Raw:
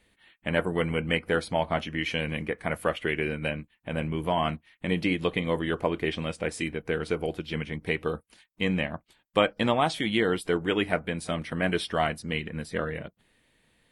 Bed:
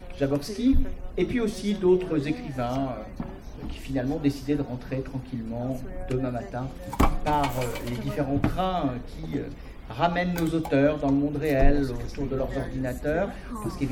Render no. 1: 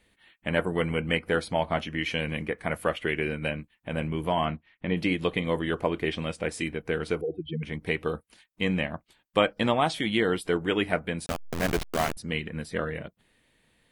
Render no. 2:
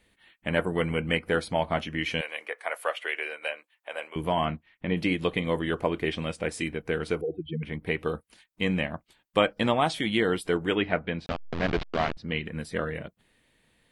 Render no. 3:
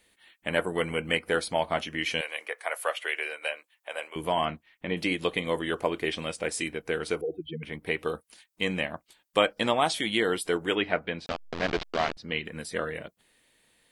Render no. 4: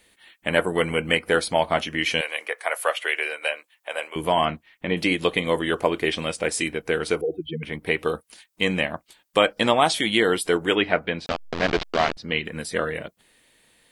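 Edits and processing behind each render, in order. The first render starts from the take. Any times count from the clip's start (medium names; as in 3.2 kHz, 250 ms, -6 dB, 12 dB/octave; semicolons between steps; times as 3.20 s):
4.45–4.97 s: distance through air 230 m; 7.21–7.63 s: spectral contrast enhancement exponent 3; 11.26–12.17 s: send-on-delta sampling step -23 dBFS
2.21–4.16 s: high-pass 540 Hz 24 dB/octave; 7.31–7.99 s: peaking EQ 6.6 kHz -13 dB 0.9 oct; 10.75–12.45 s: low-pass 4.3 kHz 24 dB/octave
tone controls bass -8 dB, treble +7 dB
trim +6 dB; peak limiter -3 dBFS, peak gain reduction 2.5 dB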